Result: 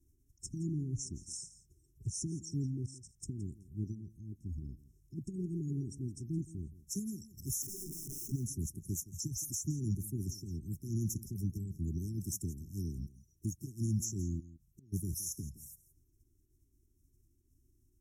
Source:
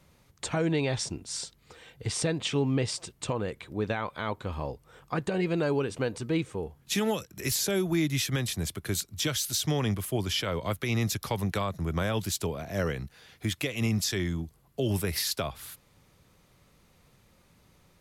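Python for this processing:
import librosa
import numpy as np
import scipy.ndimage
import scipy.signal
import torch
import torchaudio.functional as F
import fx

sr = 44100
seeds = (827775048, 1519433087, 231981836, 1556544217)

y = fx.spec_quant(x, sr, step_db=30)
y = fx.tone_stack(y, sr, knobs='6-0-2')
y = fx.level_steps(y, sr, step_db=12, at=(2.66, 3.15))
y = fx.env_flanger(y, sr, rest_ms=2.9, full_db=-44.0)
y = fx.overflow_wrap(y, sr, gain_db=48.5, at=(7.62, 8.32))
y = fx.gate_flip(y, sr, shuts_db=-53.0, range_db=-26, at=(14.39, 14.92), fade=0.02)
y = fx.brickwall_bandstop(y, sr, low_hz=410.0, high_hz=5200.0)
y = y + 10.0 ** (-17.0 / 20.0) * np.pad(y, (int(168 * sr / 1000.0), 0))[:len(y)]
y = y * 10.0 ** (11.5 / 20.0)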